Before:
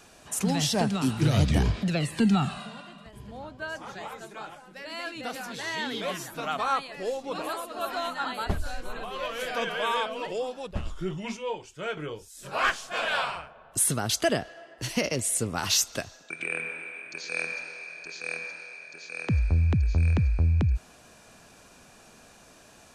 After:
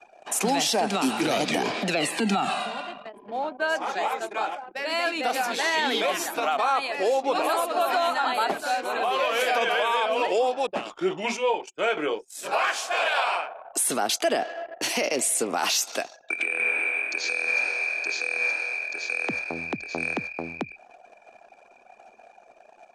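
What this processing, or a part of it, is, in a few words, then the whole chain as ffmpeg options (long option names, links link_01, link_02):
laptop speaker: -filter_complex "[0:a]asettb=1/sr,asplit=3[link_01][link_02][link_03];[link_01]atrim=end=12.534[link_04];[link_02]atrim=start=12.53:end=13.84,asetpts=PTS-STARTPTS,afade=type=in:duration=0.004:curve=qsin,afade=type=out:start_time=1.306:duration=0.004:curve=qsin,highpass=330[link_05];[link_03]atrim=start=13.836[link_06];[link_04][link_05]acrossfade=duration=0.004:curve1=hsin:curve2=qsin[link_07];[link_07][link_06]acrossfade=duration=0.004:curve1=qsin:curve2=hsin,highpass=frequency=270:width=0.5412,highpass=frequency=270:width=1.3066,equalizer=frequency=760:width_type=o:width=0.51:gain=7,equalizer=frequency=2400:width_type=o:width=0.22:gain=5.5,alimiter=limit=-24dB:level=0:latency=1:release=79,anlmdn=0.0158,volume=9dB"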